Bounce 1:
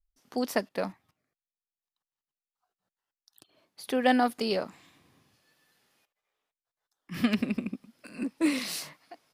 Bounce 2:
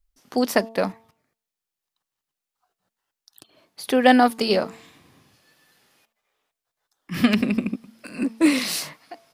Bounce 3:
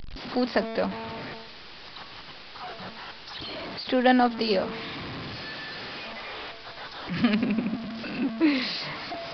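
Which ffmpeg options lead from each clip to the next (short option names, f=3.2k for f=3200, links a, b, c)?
-af "bandreject=f=224.9:t=h:w=4,bandreject=f=449.8:t=h:w=4,bandreject=f=674.7:t=h:w=4,bandreject=f=899.6:t=h:w=4,bandreject=f=1.1245k:t=h:w=4,volume=8.5dB"
-af "aeval=exprs='val(0)+0.5*0.0668*sgn(val(0))':c=same,aresample=11025,aresample=44100,volume=-6dB"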